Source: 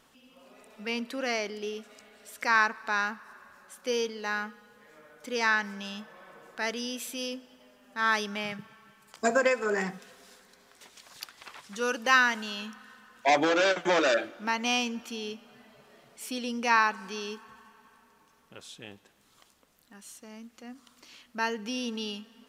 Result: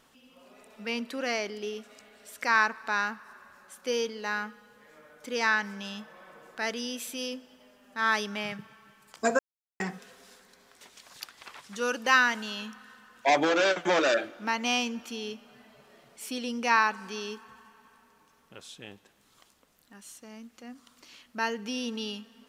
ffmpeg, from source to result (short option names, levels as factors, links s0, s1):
-filter_complex "[0:a]asplit=3[s0][s1][s2];[s0]atrim=end=9.39,asetpts=PTS-STARTPTS,afade=t=out:st=9.386:d=0.004:c=hsin[s3];[s1]atrim=start=9.39:end=9.8,asetpts=PTS-STARTPTS,volume=0[s4];[s2]atrim=start=9.8,asetpts=PTS-STARTPTS,afade=t=in:d=0.004:c=hsin[s5];[s3][s4][s5]concat=n=3:v=0:a=1"